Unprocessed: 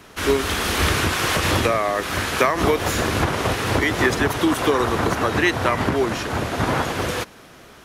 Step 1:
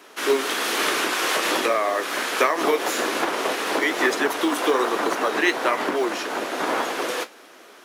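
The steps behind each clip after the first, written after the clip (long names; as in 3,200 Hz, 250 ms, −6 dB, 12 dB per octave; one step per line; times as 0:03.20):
high-pass filter 290 Hz 24 dB per octave
noise that follows the level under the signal 34 dB
flanger 1.2 Hz, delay 9.2 ms, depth 9.9 ms, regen −53%
level +3 dB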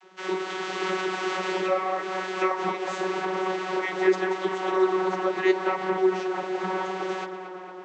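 notch filter 540 Hz, Q 14
channel vocoder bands 32, saw 187 Hz
tape delay 227 ms, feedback 83%, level −10 dB, low-pass 3,400 Hz
level −3 dB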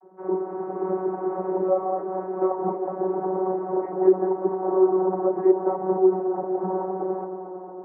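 inverse Chebyshev low-pass filter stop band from 3,700 Hz, stop band 70 dB
level +4 dB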